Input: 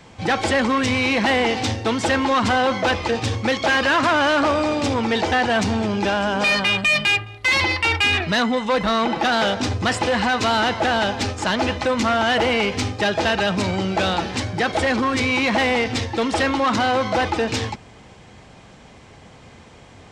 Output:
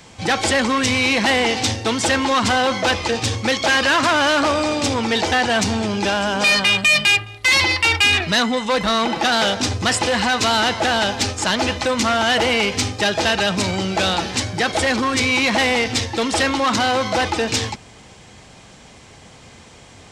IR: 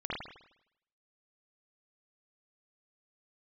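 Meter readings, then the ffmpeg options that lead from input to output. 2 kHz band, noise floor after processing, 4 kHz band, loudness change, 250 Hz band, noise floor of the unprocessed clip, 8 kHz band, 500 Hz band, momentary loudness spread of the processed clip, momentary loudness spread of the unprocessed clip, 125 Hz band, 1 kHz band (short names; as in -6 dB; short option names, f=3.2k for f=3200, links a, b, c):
+2.5 dB, -44 dBFS, +5.0 dB, +2.0 dB, 0.0 dB, -46 dBFS, +8.5 dB, 0.0 dB, 6 LU, 5 LU, 0.0 dB, +0.5 dB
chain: -af "highshelf=f=4k:g=11.5"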